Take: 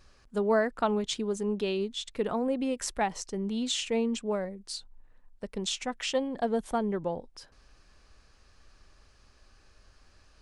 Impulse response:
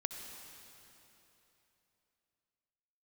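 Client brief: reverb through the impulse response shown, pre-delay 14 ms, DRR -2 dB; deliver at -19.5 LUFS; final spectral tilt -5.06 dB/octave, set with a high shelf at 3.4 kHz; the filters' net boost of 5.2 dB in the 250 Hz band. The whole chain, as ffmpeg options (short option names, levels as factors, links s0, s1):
-filter_complex "[0:a]equalizer=f=250:t=o:g=6,highshelf=f=3400:g=-4.5,asplit=2[s0][s1];[1:a]atrim=start_sample=2205,adelay=14[s2];[s1][s2]afir=irnorm=-1:irlink=0,volume=1.19[s3];[s0][s3]amix=inputs=2:normalize=0,volume=1.78"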